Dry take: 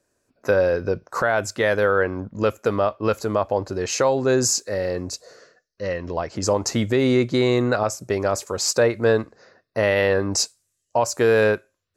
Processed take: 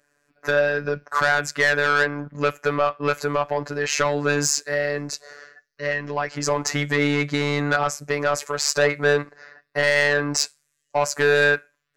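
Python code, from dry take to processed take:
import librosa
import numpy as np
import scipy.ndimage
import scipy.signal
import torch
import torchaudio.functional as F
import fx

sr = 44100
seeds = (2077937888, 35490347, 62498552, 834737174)

y = fx.peak_eq(x, sr, hz=1800.0, db=12.0, octaves=1.5)
y = 10.0 ** (-11.0 / 20.0) * np.tanh(y / 10.0 ** (-11.0 / 20.0))
y = fx.robotise(y, sr, hz=145.0)
y = F.gain(torch.from_numpy(y), 1.0).numpy()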